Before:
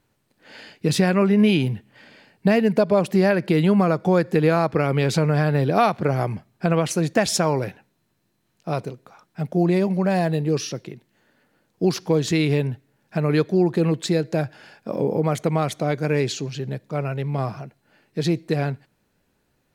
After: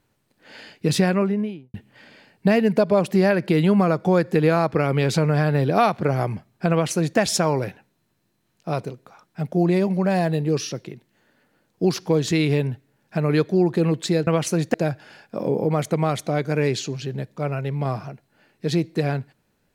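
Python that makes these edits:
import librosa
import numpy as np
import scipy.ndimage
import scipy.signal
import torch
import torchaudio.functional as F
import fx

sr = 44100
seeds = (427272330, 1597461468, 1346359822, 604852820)

y = fx.studio_fade_out(x, sr, start_s=0.97, length_s=0.77)
y = fx.edit(y, sr, fx.duplicate(start_s=6.71, length_s=0.47, to_s=14.27), tone=tone)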